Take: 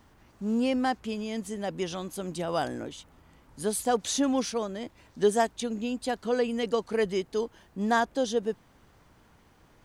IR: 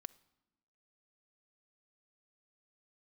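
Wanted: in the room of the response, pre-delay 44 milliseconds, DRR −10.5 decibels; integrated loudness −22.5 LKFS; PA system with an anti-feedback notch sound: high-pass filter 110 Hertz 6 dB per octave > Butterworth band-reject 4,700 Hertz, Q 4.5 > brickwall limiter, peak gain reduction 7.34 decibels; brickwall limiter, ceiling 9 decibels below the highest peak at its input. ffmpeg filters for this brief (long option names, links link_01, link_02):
-filter_complex "[0:a]alimiter=limit=-20dB:level=0:latency=1,asplit=2[link_01][link_02];[1:a]atrim=start_sample=2205,adelay=44[link_03];[link_02][link_03]afir=irnorm=-1:irlink=0,volume=16dB[link_04];[link_01][link_04]amix=inputs=2:normalize=0,highpass=frequency=110:poles=1,asuperstop=centerf=4700:order=8:qfactor=4.5,volume=2dB,alimiter=limit=-13dB:level=0:latency=1"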